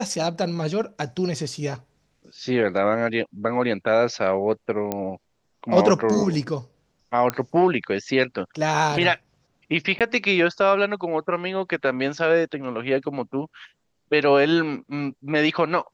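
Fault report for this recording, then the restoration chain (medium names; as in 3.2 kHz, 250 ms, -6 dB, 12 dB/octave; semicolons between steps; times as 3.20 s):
4.92 s: pop -11 dBFS
7.30 s: pop -9 dBFS
9.99–10.01 s: dropout 17 ms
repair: de-click; interpolate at 9.99 s, 17 ms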